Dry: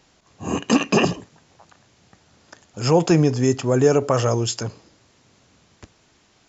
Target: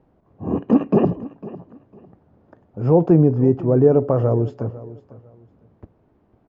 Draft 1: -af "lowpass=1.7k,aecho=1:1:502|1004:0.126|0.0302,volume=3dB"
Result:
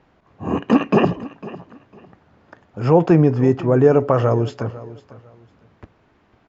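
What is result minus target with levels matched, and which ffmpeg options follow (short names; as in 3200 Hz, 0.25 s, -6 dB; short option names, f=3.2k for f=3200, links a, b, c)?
2000 Hz band +13.5 dB
-af "lowpass=640,aecho=1:1:502|1004:0.126|0.0302,volume=3dB"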